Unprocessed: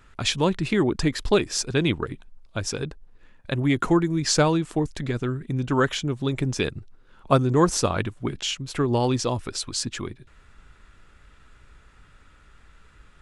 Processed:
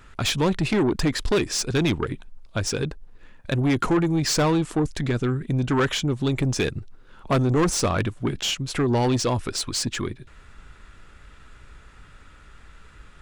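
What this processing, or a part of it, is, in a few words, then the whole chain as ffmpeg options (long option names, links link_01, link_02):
saturation between pre-emphasis and de-emphasis: -af "highshelf=frequency=3900:gain=6.5,asoftclip=type=tanh:threshold=-21dB,highshelf=frequency=3900:gain=-6.5,volume=5dB"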